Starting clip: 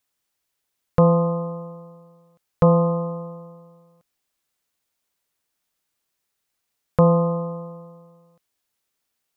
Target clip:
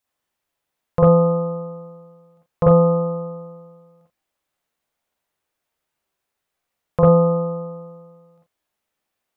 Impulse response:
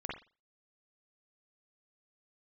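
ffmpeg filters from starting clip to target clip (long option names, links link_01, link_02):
-filter_complex "[0:a]equalizer=frequency=680:width=1.2:gain=4[link_01];[1:a]atrim=start_sample=2205,atrim=end_sample=4410[link_02];[link_01][link_02]afir=irnorm=-1:irlink=0"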